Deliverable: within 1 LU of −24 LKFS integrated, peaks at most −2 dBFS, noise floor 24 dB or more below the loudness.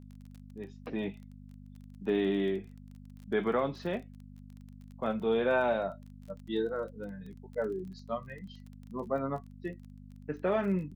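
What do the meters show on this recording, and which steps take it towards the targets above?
crackle rate 22 per second; mains hum 50 Hz; hum harmonics up to 250 Hz; level of the hum −47 dBFS; integrated loudness −33.5 LKFS; sample peak −17.5 dBFS; target loudness −24.0 LKFS
→ click removal
hum removal 50 Hz, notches 5
level +9.5 dB

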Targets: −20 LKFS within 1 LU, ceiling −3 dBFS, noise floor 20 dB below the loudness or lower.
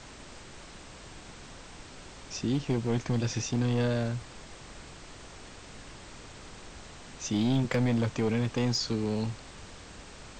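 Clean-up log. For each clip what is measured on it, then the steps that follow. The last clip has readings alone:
share of clipped samples 1.1%; peaks flattened at −21.0 dBFS; background noise floor −48 dBFS; target noise floor −50 dBFS; integrated loudness −30.0 LKFS; sample peak −21.0 dBFS; target loudness −20.0 LKFS
→ clipped peaks rebuilt −21 dBFS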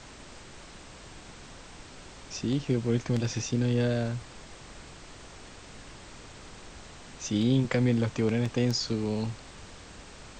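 share of clipped samples 0.0%; background noise floor −48 dBFS; target noise floor −49 dBFS
→ noise reduction from a noise print 6 dB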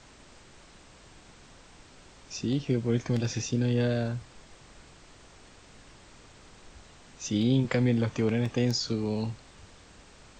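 background noise floor −54 dBFS; integrated loudness −28.5 LKFS; sample peak −13.5 dBFS; target loudness −20.0 LKFS
→ level +8.5 dB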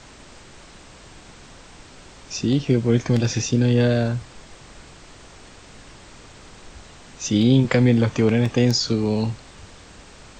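integrated loudness −20.0 LKFS; sample peak −5.0 dBFS; background noise floor −46 dBFS

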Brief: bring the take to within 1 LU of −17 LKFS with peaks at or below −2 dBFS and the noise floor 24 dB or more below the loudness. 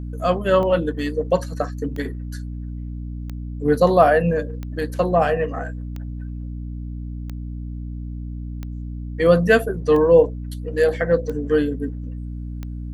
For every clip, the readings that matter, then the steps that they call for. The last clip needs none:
number of clicks 10; mains hum 60 Hz; hum harmonics up to 300 Hz; level of the hum −28 dBFS; integrated loudness −20.0 LKFS; sample peak −1.5 dBFS; target loudness −17.0 LKFS
→ click removal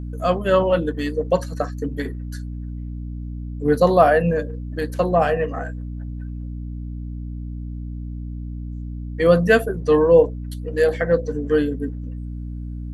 number of clicks 0; mains hum 60 Hz; hum harmonics up to 300 Hz; level of the hum −28 dBFS
→ hum removal 60 Hz, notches 5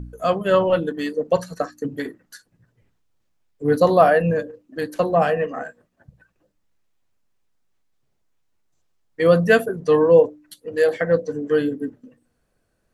mains hum none found; integrated loudness −19.5 LKFS; sample peak −2.0 dBFS; target loudness −17.0 LKFS
→ level +2.5 dB
brickwall limiter −2 dBFS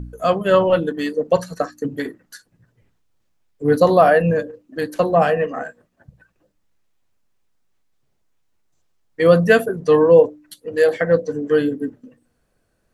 integrated loudness −17.5 LKFS; sample peak −2.0 dBFS; background noise floor −67 dBFS

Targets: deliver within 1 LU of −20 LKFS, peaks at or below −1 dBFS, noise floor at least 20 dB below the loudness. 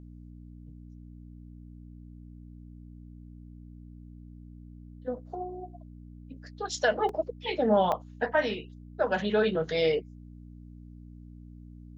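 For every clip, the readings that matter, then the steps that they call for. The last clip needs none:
number of dropouts 2; longest dropout 2.6 ms; mains hum 60 Hz; hum harmonics up to 300 Hz; level of the hum −44 dBFS; integrated loudness −29.0 LKFS; sample peak −12.5 dBFS; target loudness −20.0 LKFS
→ repair the gap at 0:07.09/0:07.92, 2.6 ms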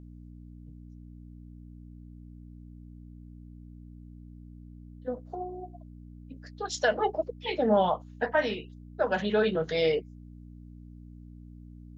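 number of dropouts 0; mains hum 60 Hz; hum harmonics up to 300 Hz; level of the hum −44 dBFS
→ hum removal 60 Hz, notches 5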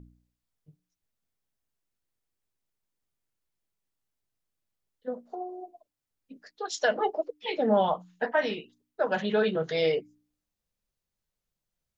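mains hum none found; integrated loudness −29.0 LKFS; sample peak −13.0 dBFS; target loudness −20.0 LKFS
→ level +9 dB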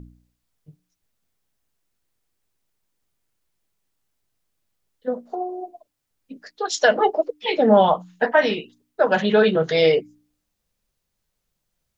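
integrated loudness −20.0 LKFS; sample peak −4.0 dBFS; background noise floor −78 dBFS

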